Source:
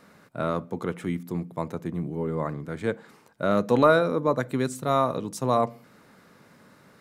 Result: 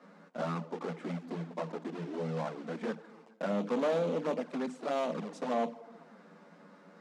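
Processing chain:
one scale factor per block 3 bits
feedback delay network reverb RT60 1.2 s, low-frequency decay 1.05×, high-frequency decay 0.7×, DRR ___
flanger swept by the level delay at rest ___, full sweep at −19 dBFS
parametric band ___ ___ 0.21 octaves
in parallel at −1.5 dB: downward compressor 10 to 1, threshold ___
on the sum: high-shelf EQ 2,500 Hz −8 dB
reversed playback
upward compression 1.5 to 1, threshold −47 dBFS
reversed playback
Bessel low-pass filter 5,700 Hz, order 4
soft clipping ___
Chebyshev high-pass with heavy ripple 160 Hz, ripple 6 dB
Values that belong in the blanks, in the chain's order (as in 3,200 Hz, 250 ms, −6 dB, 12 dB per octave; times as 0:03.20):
19.5 dB, 11.6 ms, 620 Hz, −2.5 dB, −38 dBFS, −24 dBFS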